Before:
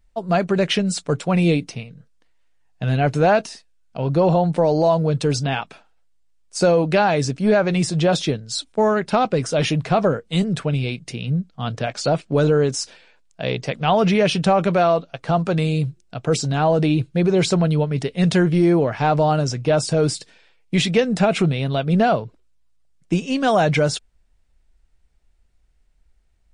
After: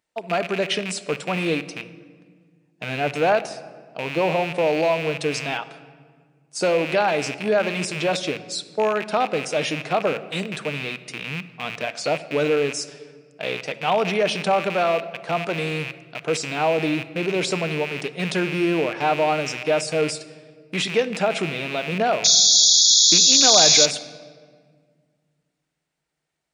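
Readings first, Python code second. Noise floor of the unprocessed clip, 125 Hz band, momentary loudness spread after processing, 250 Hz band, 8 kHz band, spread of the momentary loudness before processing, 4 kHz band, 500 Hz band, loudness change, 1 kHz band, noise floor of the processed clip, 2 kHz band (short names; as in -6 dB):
-59 dBFS, -12.0 dB, 19 LU, -8.0 dB, +12.5 dB, 9 LU, +9.0 dB, -3.0 dB, -0.5 dB, -2.5 dB, -71 dBFS, +1.5 dB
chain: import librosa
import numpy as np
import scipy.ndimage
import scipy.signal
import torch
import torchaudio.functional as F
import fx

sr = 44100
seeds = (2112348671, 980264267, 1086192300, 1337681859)

y = fx.rattle_buzz(x, sr, strikes_db=-31.0, level_db=-16.0)
y = scipy.signal.sosfilt(scipy.signal.butter(2, 290.0, 'highpass', fs=sr, output='sos'), y)
y = fx.spec_paint(y, sr, seeds[0], shape='noise', start_s=22.24, length_s=1.62, low_hz=3300.0, high_hz=7100.0, level_db=-12.0)
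y = fx.room_shoebox(y, sr, seeds[1], volume_m3=2500.0, walls='mixed', distance_m=0.5)
y = y * librosa.db_to_amplitude(-3.0)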